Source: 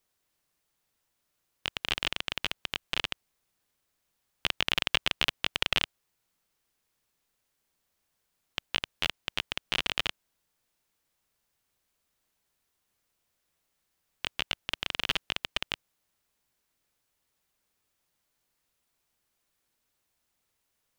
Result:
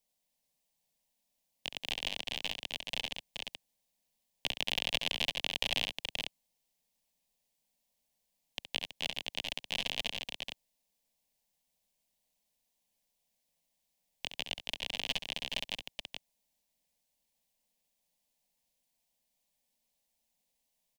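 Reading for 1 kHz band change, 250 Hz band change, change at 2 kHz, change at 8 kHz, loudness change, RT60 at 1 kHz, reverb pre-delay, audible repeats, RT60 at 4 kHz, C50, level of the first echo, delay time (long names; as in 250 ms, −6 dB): −7.0 dB, −4.0 dB, −6.0 dB, −2.0 dB, −5.0 dB, no reverb audible, no reverb audible, 2, no reverb audible, no reverb audible, −9.5 dB, 68 ms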